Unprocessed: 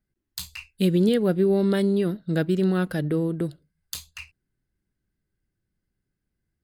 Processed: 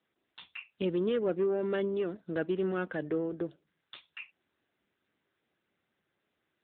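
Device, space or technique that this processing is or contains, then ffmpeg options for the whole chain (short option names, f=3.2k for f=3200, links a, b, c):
telephone: -af "highpass=350,lowpass=3.5k,asoftclip=type=tanh:threshold=-18.5dB,volume=-2dB" -ar 8000 -c:a libopencore_amrnb -b:a 10200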